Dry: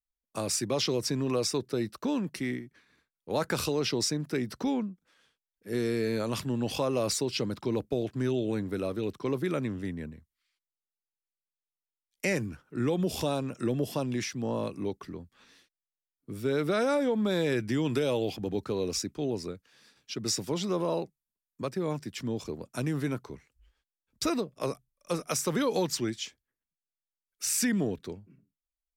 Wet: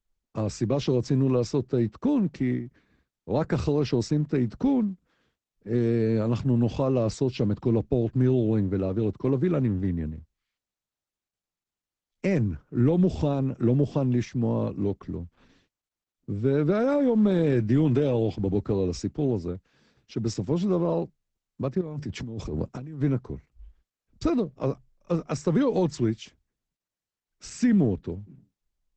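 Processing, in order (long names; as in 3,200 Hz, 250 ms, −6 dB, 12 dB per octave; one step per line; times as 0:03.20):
spectral tilt −3.5 dB per octave
0:21.81–0:23.02: compressor whose output falls as the input rises −33 dBFS, ratio −1
Opus 12 kbit/s 48,000 Hz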